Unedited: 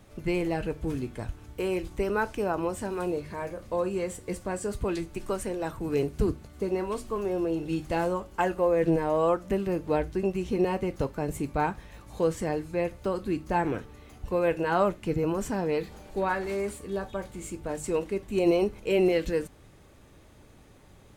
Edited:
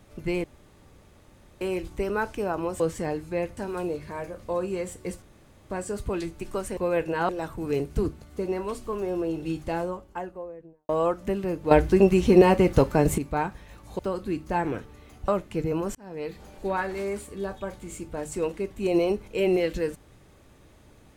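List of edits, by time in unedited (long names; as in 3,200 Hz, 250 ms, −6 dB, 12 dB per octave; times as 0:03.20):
0:00.44–0:01.61: fill with room tone
0:04.45: splice in room tone 0.48 s
0:07.64–0:09.12: fade out and dull
0:09.94–0:11.41: clip gain +10 dB
0:12.22–0:12.99: move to 0:02.80
0:14.28–0:14.80: move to 0:05.52
0:15.47–0:16.00: fade in linear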